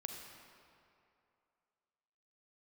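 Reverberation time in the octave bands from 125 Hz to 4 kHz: 2.3, 2.3, 2.6, 2.6, 2.2, 1.7 seconds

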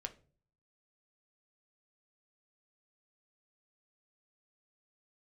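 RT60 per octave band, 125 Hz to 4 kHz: 0.80, 0.60, 0.50, 0.35, 0.30, 0.30 seconds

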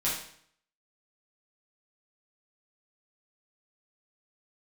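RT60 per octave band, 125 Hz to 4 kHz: 0.70, 0.65, 0.60, 0.60, 0.60, 0.60 seconds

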